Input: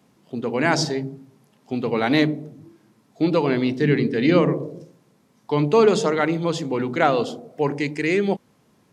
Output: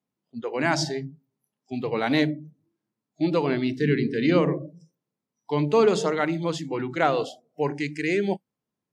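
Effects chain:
noise reduction from a noise print of the clip's start 23 dB
level −3.5 dB

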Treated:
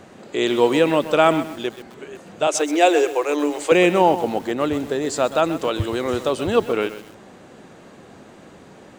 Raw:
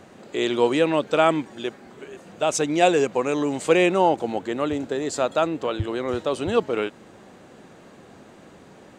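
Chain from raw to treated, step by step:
0:02.47–0:03.72: Chebyshev high-pass filter 290 Hz, order 10
0:05.44–0:06.28: high-shelf EQ 5,600 Hz +11 dB
feedback echo at a low word length 129 ms, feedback 35%, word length 6 bits, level −12.5 dB
level +3 dB

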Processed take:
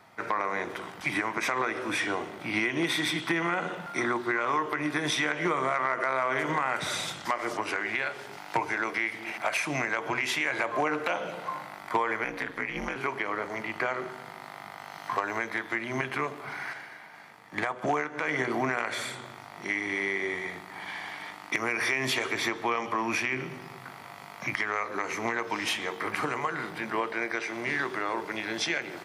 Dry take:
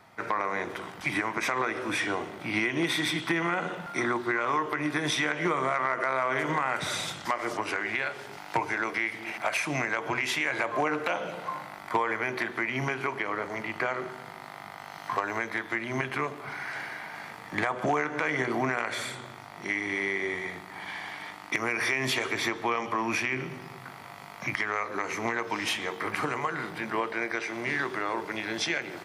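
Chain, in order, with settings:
0:12.24–0:12.96: ring modulation 92 Hz
low-shelf EQ 96 Hz −6 dB
0:16.73–0:18.28: expander for the loud parts 1.5 to 1, over −42 dBFS

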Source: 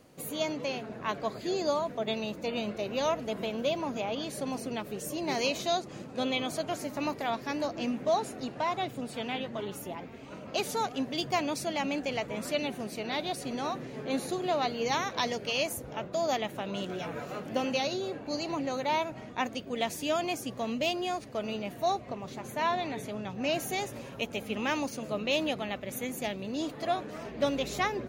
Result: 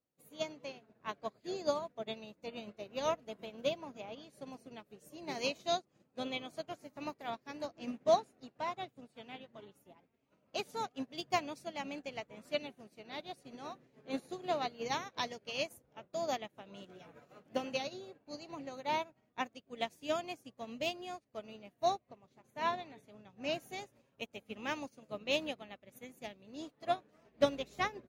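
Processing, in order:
expander for the loud parts 2.5 to 1, over −46 dBFS
level +1 dB

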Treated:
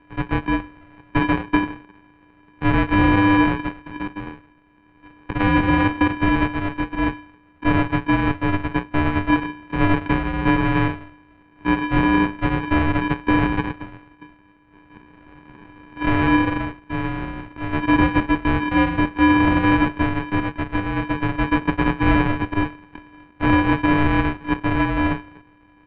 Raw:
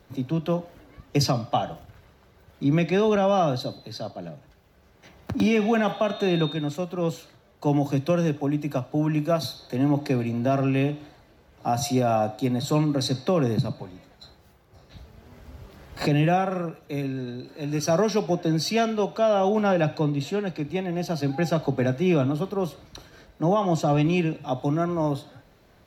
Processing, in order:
samples sorted by size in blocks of 64 samples
single-sideband voice off tune −390 Hz 280–3,000 Hz
level +6.5 dB

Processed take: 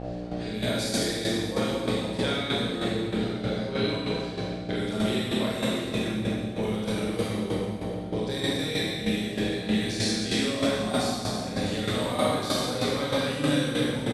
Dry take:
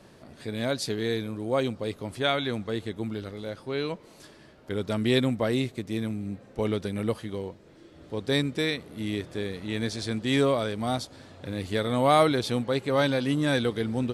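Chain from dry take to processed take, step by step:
high-shelf EQ 2,900 Hz +11 dB
double-tracking delay 47 ms −2.5 dB
hum with harmonics 60 Hz, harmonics 13, −36 dBFS −2 dB per octave
reverb reduction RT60 1.8 s
low-pass that shuts in the quiet parts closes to 2,300 Hz, open at −23 dBFS
downward compressor, threshold −31 dBFS, peak gain reduction 16.5 dB
convolution reverb RT60 3.9 s, pre-delay 21 ms, DRR −9 dB
shaped tremolo saw down 3.2 Hz, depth 60%

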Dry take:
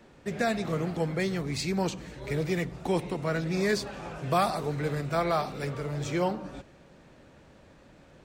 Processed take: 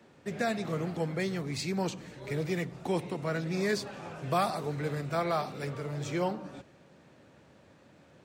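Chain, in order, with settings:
high-pass filter 82 Hz 24 dB per octave
level −3 dB

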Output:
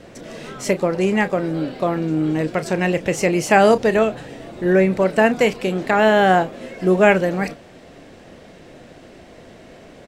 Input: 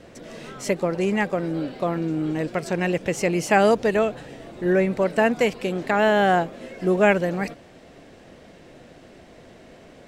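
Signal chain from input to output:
double-tracking delay 32 ms −13 dB
level +4 dB

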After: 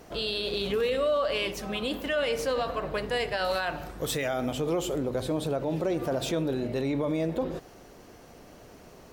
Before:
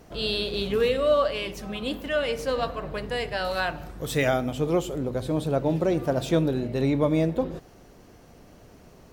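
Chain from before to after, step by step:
brickwall limiter −22 dBFS, peak gain reduction 11.5 dB
bass and treble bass −6 dB, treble 0 dB
level +3 dB

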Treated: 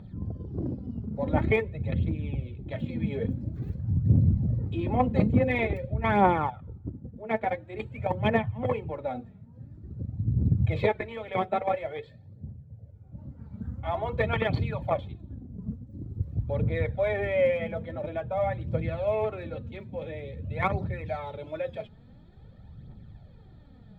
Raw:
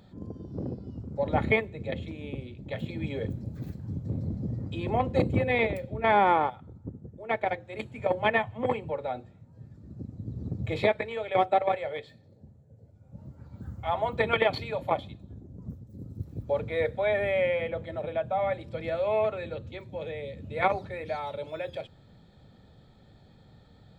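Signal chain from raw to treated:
bass and treble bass +9 dB, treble −11 dB
phase shifter 0.48 Hz, delay 4.9 ms, feedback 53%
level −2.5 dB

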